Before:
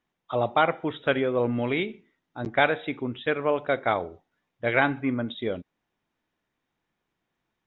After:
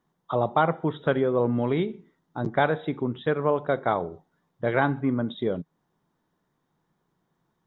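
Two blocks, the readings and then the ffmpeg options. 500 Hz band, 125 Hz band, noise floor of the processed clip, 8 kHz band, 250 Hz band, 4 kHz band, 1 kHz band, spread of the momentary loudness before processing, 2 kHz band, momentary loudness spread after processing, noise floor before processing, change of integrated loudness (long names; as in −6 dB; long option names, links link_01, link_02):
+1.0 dB, +5.0 dB, −76 dBFS, can't be measured, +2.0 dB, −5.5 dB, +0.5 dB, 9 LU, −4.5 dB, 8 LU, −82 dBFS, 0.0 dB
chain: -filter_complex "[0:a]equalizer=frequency=160:width_type=o:width=0.67:gain=11,equalizer=frequency=400:width_type=o:width=0.67:gain=4,equalizer=frequency=1000:width_type=o:width=0.67:gain=5,equalizer=frequency=2500:width_type=o:width=0.67:gain=-11,asplit=2[link_01][link_02];[link_02]acompressor=threshold=-33dB:ratio=6,volume=2.5dB[link_03];[link_01][link_03]amix=inputs=2:normalize=0,volume=-4dB"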